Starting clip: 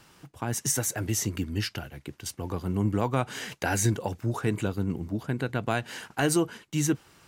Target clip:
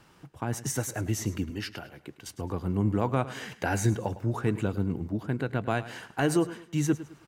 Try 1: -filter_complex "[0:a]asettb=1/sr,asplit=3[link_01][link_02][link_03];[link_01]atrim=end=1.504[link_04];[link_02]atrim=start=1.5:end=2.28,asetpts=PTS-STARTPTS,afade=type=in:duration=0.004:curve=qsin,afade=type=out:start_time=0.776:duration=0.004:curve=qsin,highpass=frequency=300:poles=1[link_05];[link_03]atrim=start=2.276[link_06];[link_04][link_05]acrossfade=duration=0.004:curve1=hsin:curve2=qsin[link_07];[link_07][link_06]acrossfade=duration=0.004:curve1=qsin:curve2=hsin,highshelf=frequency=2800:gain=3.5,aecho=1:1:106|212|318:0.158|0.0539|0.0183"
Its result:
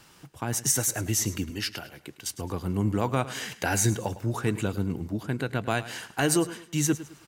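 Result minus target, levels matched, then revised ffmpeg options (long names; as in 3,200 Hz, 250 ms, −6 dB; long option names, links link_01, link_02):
4,000 Hz band +5.5 dB
-filter_complex "[0:a]asettb=1/sr,asplit=3[link_01][link_02][link_03];[link_01]atrim=end=1.504[link_04];[link_02]atrim=start=1.5:end=2.28,asetpts=PTS-STARTPTS,afade=type=in:duration=0.004:curve=qsin,afade=type=out:start_time=0.776:duration=0.004:curve=qsin,highpass=frequency=300:poles=1[link_05];[link_03]atrim=start=2.276[link_06];[link_04][link_05]acrossfade=duration=0.004:curve1=hsin:curve2=qsin[link_07];[link_07][link_06]acrossfade=duration=0.004:curve1=qsin:curve2=hsin,highshelf=frequency=2800:gain=-8,aecho=1:1:106|212|318:0.158|0.0539|0.0183"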